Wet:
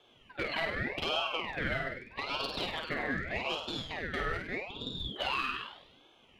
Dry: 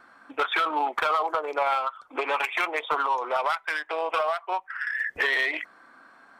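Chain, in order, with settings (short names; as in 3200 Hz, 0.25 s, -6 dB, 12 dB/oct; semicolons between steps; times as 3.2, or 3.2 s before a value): 3.07–3.77 LPF 9400 Hz 12 dB/oct; flutter echo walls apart 8.6 m, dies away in 0.69 s; ring modulator with a swept carrier 1300 Hz, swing 50%, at 0.82 Hz; gain -7.5 dB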